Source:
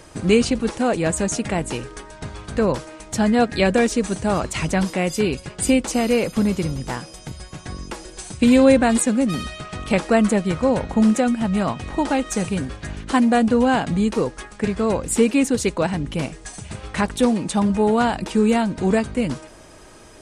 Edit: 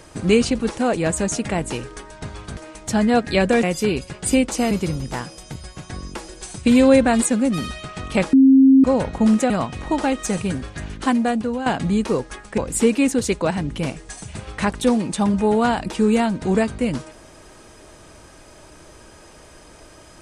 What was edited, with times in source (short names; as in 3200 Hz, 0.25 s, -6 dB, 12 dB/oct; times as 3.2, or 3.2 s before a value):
2.57–2.82 cut
3.88–4.99 cut
6.07–6.47 cut
10.09–10.6 bleep 267 Hz -7.5 dBFS
11.26–11.57 cut
13.01–13.73 fade out, to -11 dB
14.65–14.94 cut